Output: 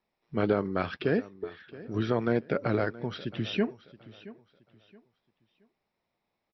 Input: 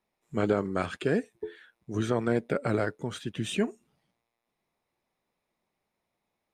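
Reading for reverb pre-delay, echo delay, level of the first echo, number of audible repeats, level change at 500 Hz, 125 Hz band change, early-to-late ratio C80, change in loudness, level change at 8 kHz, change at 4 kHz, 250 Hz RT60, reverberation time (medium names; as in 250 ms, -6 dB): no reverb, 673 ms, -18.5 dB, 2, 0.0 dB, 0.0 dB, no reverb, -0.5 dB, under -15 dB, 0.0 dB, no reverb, no reverb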